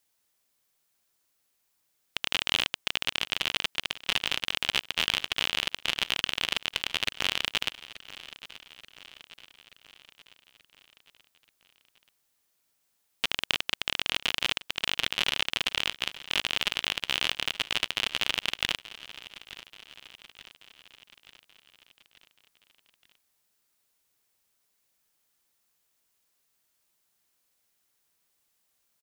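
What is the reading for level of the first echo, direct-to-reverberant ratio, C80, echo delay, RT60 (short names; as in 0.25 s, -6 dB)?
-17.0 dB, none, none, 0.881 s, none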